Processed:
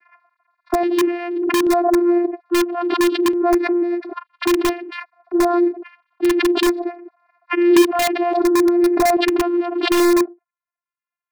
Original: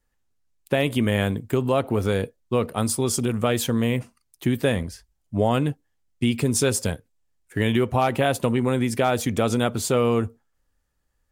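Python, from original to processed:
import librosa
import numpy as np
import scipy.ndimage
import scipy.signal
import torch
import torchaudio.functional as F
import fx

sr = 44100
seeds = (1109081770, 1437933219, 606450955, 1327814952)

p1 = fx.sine_speech(x, sr)
p2 = fx.env_lowpass(p1, sr, base_hz=1400.0, full_db=-18.5)
p3 = fx.small_body(p2, sr, hz=(240.0, 730.0), ring_ms=25, db=8)
p4 = fx.vocoder(p3, sr, bands=8, carrier='saw', carrier_hz=348.0)
p5 = (np.mod(10.0 ** (12.0 / 20.0) * p4 + 1.0, 2.0) - 1.0) / 10.0 ** (12.0 / 20.0)
p6 = p4 + (p5 * 10.0 ** (-3.5 / 20.0))
p7 = fx.filter_lfo_notch(p6, sr, shape='square', hz=0.6, low_hz=560.0, high_hz=3000.0, q=1.6)
p8 = fx.pre_swell(p7, sr, db_per_s=37.0)
y = p8 * 10.0 ** (-1.0 / 20.0)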